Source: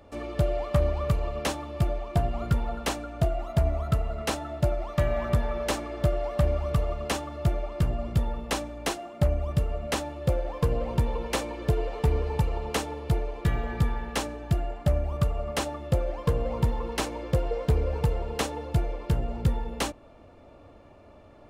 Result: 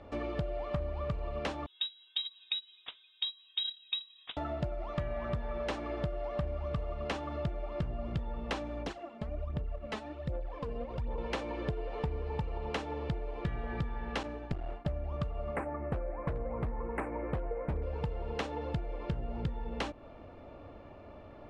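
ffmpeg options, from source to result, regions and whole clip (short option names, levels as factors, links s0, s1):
-filter_complex "[0:a]asettb=1/sr,asplit=3[s0][s1][s2];[s0]atrim=end=1.664[s3];[s1]atrim=start=1.66:end=4.37,asetpts=PTS-STARTPTS,afade=t=in:d=0.004:c=qsin,afade=t=out:st=2.706:d=0.004:c=qsin,agate=range=0.0562:threshold=0.0631:ratio=16:release=100:detection=peak,lowpass=f=3300:t=q:w=0.5098,lowpass=f=3300:t=q:w=0.6013,lowpass=f=3300:t=q:w=0.9,lowpass=f=3300:t=q:w=2.563,afreqshift=-3900[s4];[s2]atrim=start=4.366[s5];[s3][s4]acrossfade=d=0.004:c1=hsin:c2=qsin[s6];[s6][s5]acrossfade=d=0.004:c1=qsin:c2=hsin,asettb=1/sr,asplit=3[s7][s8][s9];[s7]atrim=end=8.824[s10];[s8]atrim=start=8.82:end=11.18,asetpts=PTS-STARTPTS,afade=t=in:d=0.004:c=qsin,afade=t=out:st=2.356:d=0.004:c=qsin,agate=range=0.355:threshold=0.0316:ratio=16:release=100:detection=peak,acompressor=threshold=0.0141:ratio=4:attack=3.2:release=140:knee=1:detection=peak,aphaser=in_gain=1:out_gain=1:delay=4.7:decay=0.63:speed=1.3:type=sinusoidal[s11];[s9]atrim=start=11.176[s12];[s10][s11]acrossfade=d=0.004:c1=hsin:c2=qsin[s13];[s13][s12]acrossfade=d=0.004:c1=qsin:c2=hsin,asettb=1/sr,asplit=3[s14][s15][s16];[s14]atrim=end=14.234[s17];[s15]atrim=start=14.23:end=14.85,asetpts=PTS-STARTPTS,afade=t=in:d=0.004:c=qsin,afade=t=out:st=0.616:d=0.004:c=qsin,agate=range=0.0224:threshold=0.02:ratio=3:release=100:detection=peak,aeval=exprs='clip(val(0),-1,0.0237)':c=same[s18];[s16]atrim=start=14.846[s19];[s17][s18]acrossfade=d=0.004:c1=hsin:c2=qsin[s20];[s20][s19]acrossfade=d=0.004:c1=qsin:c2=hsin,asettb=1/sr,asplit=3[s21][s22][s23];[s21]atrim=end=15.564[s24];[s22]atrim=start=15.56:end=17.83,asetpts=PTS-STARTPTS,afade=t=in:d=0.004:c=qsin,afade=t=out:st=2.266:d=0.004:c=qsin,asuperstop=centerf=4500:order=12:qfactor=0.77,aeval=exprs='0.119*(abs(mod(val(0)/0.119+3,4)-2)-1)':c=same[s25];[s23]atrim=start=17.826[s26];[s24][s25]acrossfade=d=0.004:c1=hsin:c2=qsin[s27];[s27][s26]acrossfade=d=0.004:c1=qsin:c2=hsin,lowpass=3600,acompressor=threshold=0.02:ratio=6,volume=1.19"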